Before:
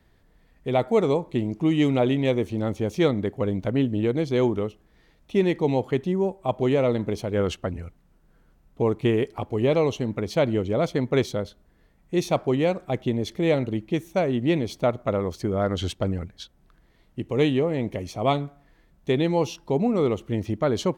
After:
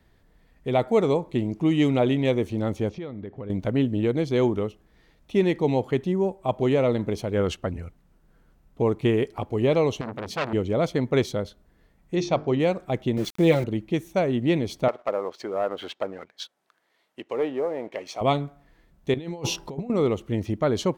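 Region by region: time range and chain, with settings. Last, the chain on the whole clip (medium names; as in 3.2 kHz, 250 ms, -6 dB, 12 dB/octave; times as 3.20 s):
2.89–3.50 s: distance through air 220 m + compression, threshold -32 dBFS
10.01–10.53 s: high-pass 81 Hz + hum notches 60/120/180/240 Hz + transformer saturation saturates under 2.7 kHz
12.15–12.60 s: Chebyshev low-pass 5.8 kHz, order 3 + hum notches 50/100/150/200/250/300/350/400/450 Hz
13.17–13.64 s: comb 5.8 ms, depth 67% + small samples zeroed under -36 dBFS
14.88–18.21 s: low-pass that closes with the level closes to 1.1 kHz, closed at -20 dBFS + high-pass 580 Hz + waveshaping leveller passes 1
19.14–19.90 s: de-hum 196.5 Hz, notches 9 + compressor with a negative ratio -29 dBFS, ratio -0.5
whole clip: none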